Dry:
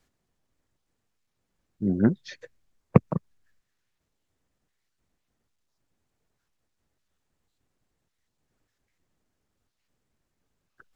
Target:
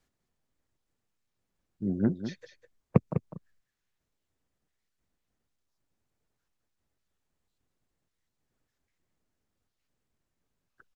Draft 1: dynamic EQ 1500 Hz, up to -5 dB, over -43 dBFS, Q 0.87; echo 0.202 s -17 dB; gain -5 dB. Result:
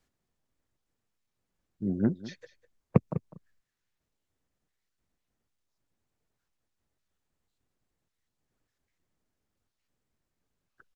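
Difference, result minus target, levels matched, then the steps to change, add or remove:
echo-to-direct -6.5 dB
change: echo 0.202 s -10.5 dB

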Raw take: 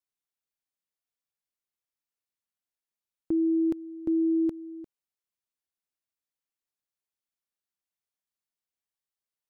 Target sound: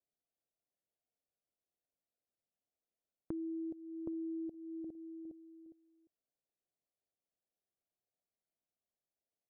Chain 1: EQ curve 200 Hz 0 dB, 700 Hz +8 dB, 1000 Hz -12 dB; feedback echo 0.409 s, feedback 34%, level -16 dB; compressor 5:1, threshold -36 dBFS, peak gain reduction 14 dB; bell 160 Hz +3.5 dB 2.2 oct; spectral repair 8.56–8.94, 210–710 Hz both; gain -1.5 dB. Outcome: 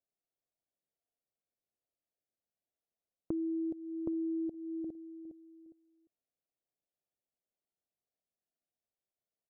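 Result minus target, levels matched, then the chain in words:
compressor: peak gain reduction -5.5 dB
EQ curve 200 Hz 0 dB, 700 Hz +8 dB, 1000 Hz -12 dB; feedback echo 0.409 s, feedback 34%, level -16 dB; compressor 5:1, threshold -43 dBFS, peak gain reduction 19.5 dB; bell 160 Hz +3.5 dB 2.2 oct; spectral repair 8.56–8.94, 210–710 Hz both; gain -1.5 dB

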